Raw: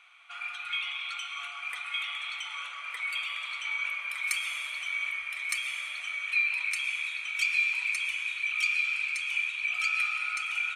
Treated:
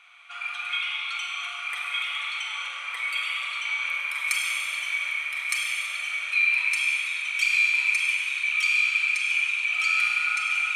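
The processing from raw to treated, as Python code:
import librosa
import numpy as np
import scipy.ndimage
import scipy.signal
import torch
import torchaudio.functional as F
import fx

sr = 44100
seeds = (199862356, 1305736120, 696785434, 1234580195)

y = fx.rev_schroeder(x, sr, rt60_s=1.8, comb_ms=32, drr_db=0.5)
y = y * 10.0 ** (3.0 / 20.0)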